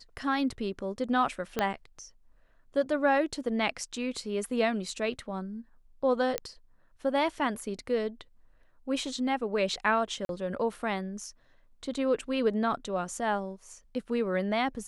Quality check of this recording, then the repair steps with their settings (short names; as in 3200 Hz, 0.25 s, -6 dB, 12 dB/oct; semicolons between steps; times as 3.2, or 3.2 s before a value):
1.59 pop -13 dBFS
6.38 pop -13 dBFS
10.25–10.29 gap 42 ms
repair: de-click; interpolate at 10.25, 42 ms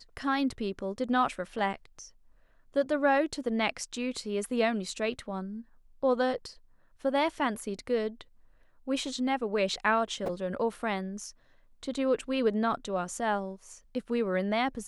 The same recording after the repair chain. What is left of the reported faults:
1.59 pop